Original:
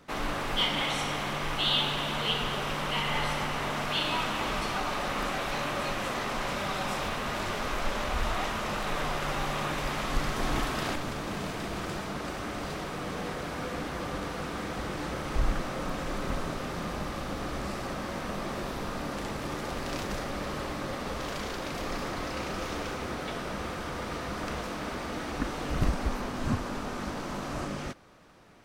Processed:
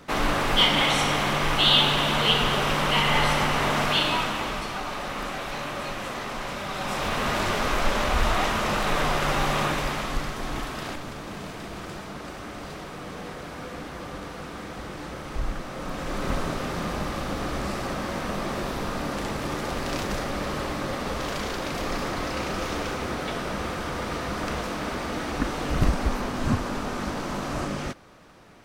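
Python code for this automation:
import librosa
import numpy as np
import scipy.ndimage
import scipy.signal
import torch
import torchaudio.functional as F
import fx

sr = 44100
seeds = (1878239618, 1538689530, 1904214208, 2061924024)

y = fx.gain(x, sr, db=fx.line((3.84, 8.0), (4.67, -0.5), (6.67, -0.5), (7.22, 7.0), (9.62, 7.0), (10.4, -2.0), (15.66, -2.0), (16.3, 5.0)))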